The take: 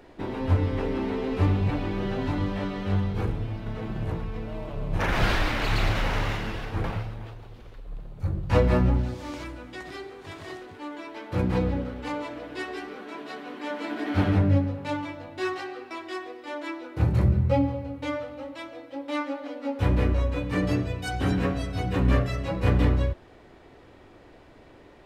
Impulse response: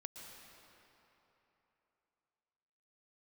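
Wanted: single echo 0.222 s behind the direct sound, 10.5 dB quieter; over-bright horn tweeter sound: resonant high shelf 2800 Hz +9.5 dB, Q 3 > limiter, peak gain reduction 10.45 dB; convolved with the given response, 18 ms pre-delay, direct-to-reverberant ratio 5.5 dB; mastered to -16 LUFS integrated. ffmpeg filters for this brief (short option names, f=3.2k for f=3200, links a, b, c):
-filter_complex "[0:a]aecho=1:1:222:0.299,asplit=2[a][b];[1:a]atrim=start_sample=2205,adelay=18[c];[b][c]afir=irnorm=-1:irlink=0,volume=-2dB[d];[a][d]amix=inputs=2:normalize=0,highshelf=f=2.8k:t=q:w=3:g=9.5,volume=12dB,alimiter=limit=-5dB:level=0:latency=1"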